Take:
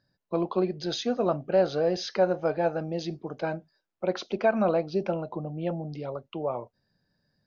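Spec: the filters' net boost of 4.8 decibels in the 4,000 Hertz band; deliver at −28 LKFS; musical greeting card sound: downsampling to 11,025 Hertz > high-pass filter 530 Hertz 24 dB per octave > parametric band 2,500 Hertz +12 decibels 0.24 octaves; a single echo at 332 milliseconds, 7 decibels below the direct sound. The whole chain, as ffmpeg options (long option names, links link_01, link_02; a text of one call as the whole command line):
ffmpeg -i in.wav -af "equalizer=frequency=4000:width_type=o:gain=5,aecho=1:1:332:0.447,aresample=11025,aresample=44100,highpass=frequency=530:width=0.5412,highpass=frequency=530:width=1.3066,equalizer=frequency=2500:width_type=o:width=0.24:gain=12,volume=2.5dB" out.wav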